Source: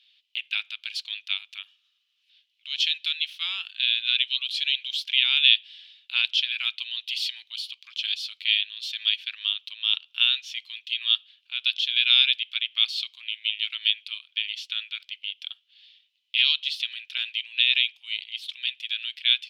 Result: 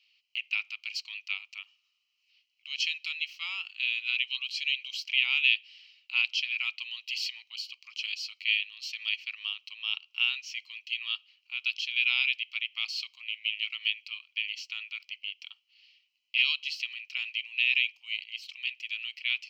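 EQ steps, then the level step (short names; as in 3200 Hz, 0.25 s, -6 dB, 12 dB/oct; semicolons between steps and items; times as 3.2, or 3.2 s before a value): fixed phaser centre 2400 Hz, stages 8; 0.0 dB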